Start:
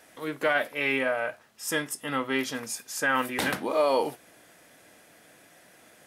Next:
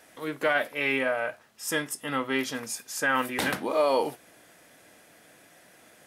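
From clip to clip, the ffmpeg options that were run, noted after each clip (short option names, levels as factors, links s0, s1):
-af anull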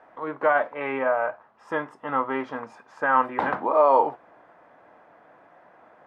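-af "lowpass=f=1000:t=q:w=2.3,lowshelf=f=490:g=-9.5,volume=1.88"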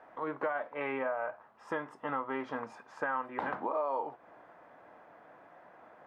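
-af "acompressor=threshold=0.0355:ratio=5,volume=0.75"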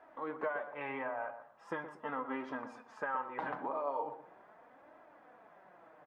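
-filter_complex "[0:a]flanger=delay=2.9:depth=4.6:regen=31:speed=0.4:shape=triangular,asplit=2[s0][s1];[s1]adelay=122,lowpass=f=1300:p=1,volume=0.335,asplit=2[s2][s3];[s3]adelay=122,lowpass=f=1300:p=1,volume=0.27,asplit=2[s4][s5];[s5]adelay=122,lowpass=f=1300:p=1,volume=0.27[s6];[s0][s2][s4][s6]amix=inputs=4:normalize=0"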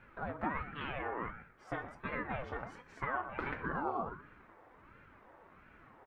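-af "aeval=exprs='val(0)*sin(2*PI*470*n/s+470*0.65/1.4*sin(2*PI*1.4*n/s))':c=same,volume=1.41"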